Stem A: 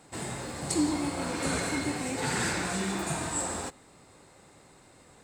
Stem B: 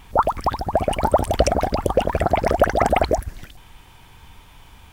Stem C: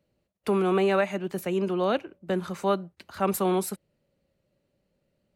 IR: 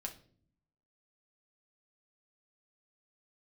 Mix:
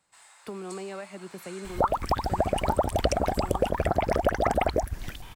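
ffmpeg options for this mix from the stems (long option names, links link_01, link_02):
-filter_complex "[0:a]highpass=frequency=880:width=0.5412,highpass=frequency=880:width=1.3066,volume=-14dB[link_01];[1:a]adelay=1650,volume=2.5dB[link_02];[2:a]acompressor=threshold=-29dB:ratio=3,volume=-7.5dB[link_03];[link_01][link_02][link_03]amix=inputs=3:normalize=0,acompressor=threshold=-25dB:ratio=2.5"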